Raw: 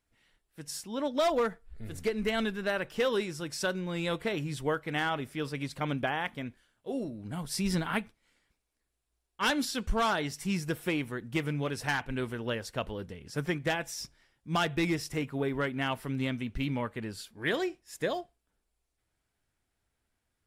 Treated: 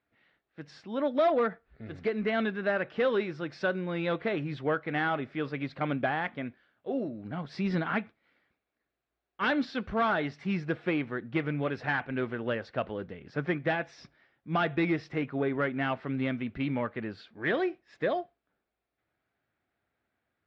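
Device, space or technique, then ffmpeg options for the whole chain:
overdrive pedal into a guitar cabinet: -filter_complex "[0:a]asplit=2[link_01][link_02];[link_02]highpass=frequency=720:poles=1,volume=11dB,asoftclip=type=tanh:threshold=-16dB[link_03];[link_01][link_03]amix=inputs=2:normalize=0,lowpass=frequency=1000:poles=1,volume=-6dB,highpass=90,equalizer=frequency=450:width_type=q:width=4:gain=-3,equalizer=frequency=950:width_type=q:width=4:gain=-7,equalizer=frequency=3000:width_type=q:width=4:gain=-4,lowpass=frequency=4100:width=0.5412,lowpass=frequency=4100:width=1.3066,volume=3.5dB"

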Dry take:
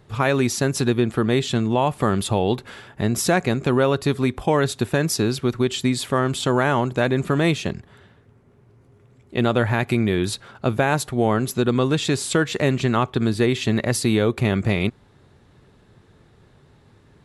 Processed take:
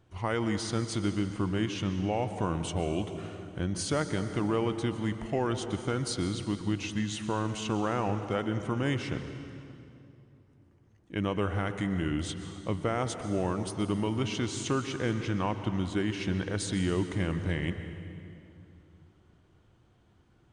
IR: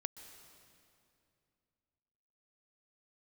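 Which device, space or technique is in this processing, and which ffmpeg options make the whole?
slowed and reverbed: -filter_complex "[0:a]asetrate=37044,aresample=44100[link_01];[1:a]atrim=start_sample=2205[link_02];[link_01][link_02]afir=irnorm=-1:irlink=0,volume=-8dB"

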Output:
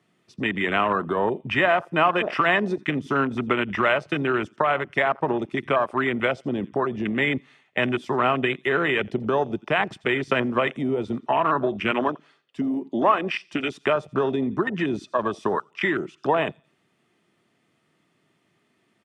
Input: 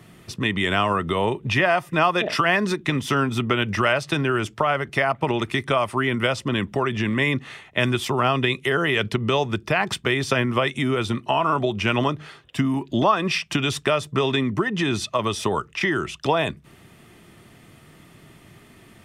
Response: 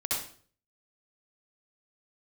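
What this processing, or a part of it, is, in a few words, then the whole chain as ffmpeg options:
over-cleaned archive recording: -filter_complex "[0:a]asettb=1/sr,asplit=3[link_01][link_02][link_03];[link_01]atrim=end=11.914[link_04];[link_02]atrim=start=11.91:end=13.79,asetpts=PTS-STARTPTS,afade=type=in:duration=0.004:curve=qsin,afade=type=out:start_time=1.876:duration=0.004:curve=qsin,highpass=210[link_05];[link_03]atrim=start=13.786[link_06];[link_04][link_05]acrossfade=duration=0.004:curve1=hsin:curve2=qsin[link_07];[link_07][link_06]acrossfade=duration=0.004:curve1=qsin:curve2=hsin,highpass=190,lowpass=7900,aecho=1:1:86|172|258:0.119|0.0487|0.02,afwtdn=0.0562"

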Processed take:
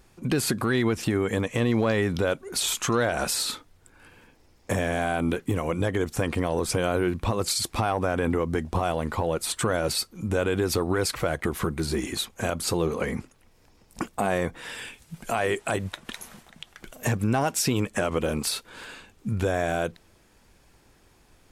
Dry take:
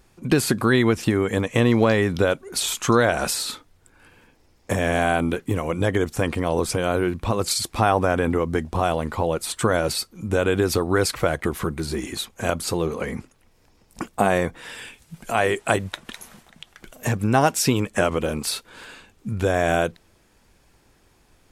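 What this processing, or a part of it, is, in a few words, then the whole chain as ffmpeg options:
soft clipper into limiter: -af "asoftclip=type=tanh:threshold=-6.5dB,alimiter=limit=-15dB:level=0:latency=1:release=154"

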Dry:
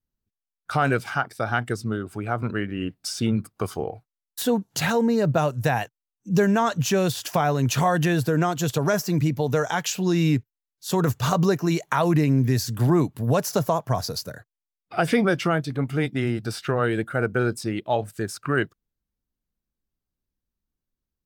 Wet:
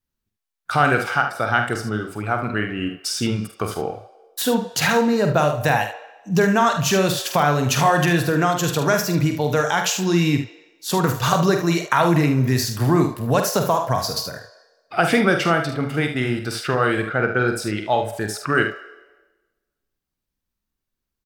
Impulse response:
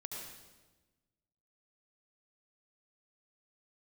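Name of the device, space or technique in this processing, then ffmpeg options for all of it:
filtered reverb send: -filter_complex "[0:a]asplit=2[link_01][link_02];[link_02]highpass=frequency=480:width=0.5412,highpass=frequency=480:width=1.3066,lowpass=4900[link_03];[1:a]atrim=start_sample=2205[link_04];[link_03][link_04]afir=irnorm=-1:irlink=0,volume=-9dB[link_05];[link_01][link_05]amix=inputs=2:normalize=0,asettb=1/sr,asplit=3[link_06][link_07][link_08];[link_06]atrim=end=17.044[link_09];[link_07]atrim=start=17.04:end=17.48,asetpts=PTS-STARTPTS,afade=type=in:duration=0.004:curve=qsin,afade=type=out:start_time=0.436:duration=0.004:curve=qsin,lowpass=frequency=5700:width=0.5412,lowpass=frequency=5700:width=1.3066[link_10];[link_08]atrim=start=17.476[link_11];[link_09][link_10]acrossfade=duration=0.004:curve1=hsin:curve2=qsin[link_12];[link_12][link_11]acrossfade=duration=0.004:curve1=qsin:curve2=hsin,lowshelf=frequency=330:gain=-5,aecho=1:1:47|75:0.422|0.316,volume=4.5dB"

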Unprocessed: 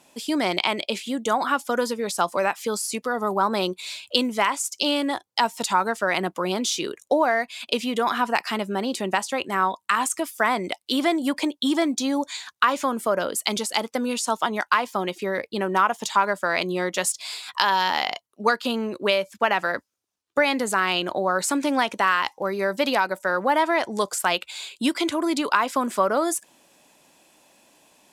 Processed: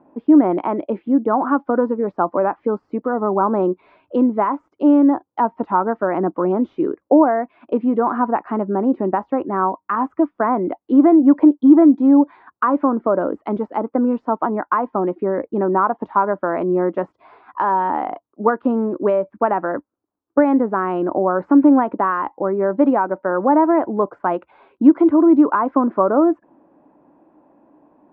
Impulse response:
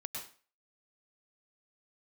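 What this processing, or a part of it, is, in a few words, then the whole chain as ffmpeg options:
under water: -af "lowpass=frequency=1200:width=0.5412,lowpass=frequency=1200:width=1.3066,equalizer=frequency=300:width_type=o:width=0.54:gain=10.5,volume=4.5dB"

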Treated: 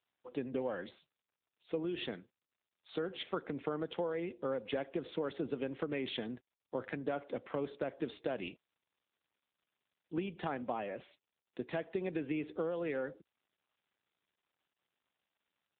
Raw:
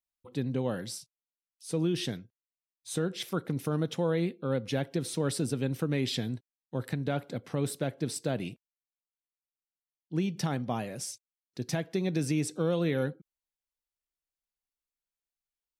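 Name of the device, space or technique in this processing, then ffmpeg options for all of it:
voicemail: -filter_complex "[0:a]asplit=3[link_01][link_02][link_03];[link_01]afade=type=out:start_time=7.99:duration=0.02[link_04];[link_02]highshelf=frequency=2900:gain=6,afade=type=in:start_time=7.99:duration=0.02,afade=type=out:start_time=10.2:duration=0.02[link_05];[link_03]afade=type=in:start_time=10.2:duration=0.02[link_06];[link_04][link_05][link_06]amix=inputs=3:normalize=0,highpass=360,lowpass=3100,acompressor=threshold=-34dB:ratio=6,volume=2.5dB" -ar 8000 -c:a libopencore_amrnb -b:a 7950

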